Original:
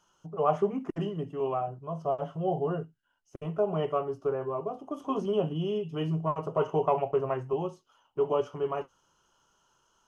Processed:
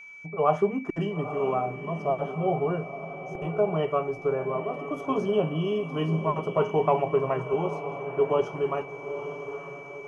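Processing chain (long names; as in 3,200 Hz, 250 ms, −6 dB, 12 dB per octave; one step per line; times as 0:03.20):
steady tone 2,300 Hz −46 dBFS
feedback delay with all-pass diffusion 919 ms, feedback 44%, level −10 dB
level +3 dB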